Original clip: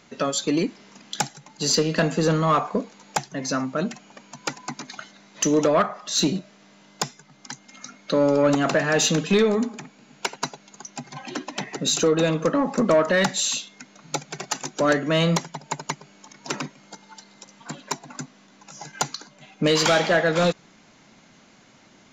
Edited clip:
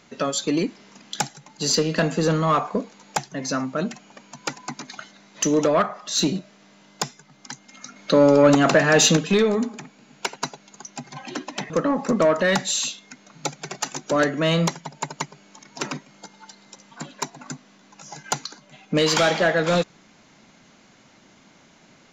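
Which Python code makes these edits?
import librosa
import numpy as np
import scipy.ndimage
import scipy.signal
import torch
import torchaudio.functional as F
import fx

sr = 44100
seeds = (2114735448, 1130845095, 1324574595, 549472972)

y = fx.edit(x, sr, fx.clip_gain(start_s=7.96, length_s=1.21, db=4.5),
    fx.cut(start_s=11.7, length_s=0.69), tone=tone)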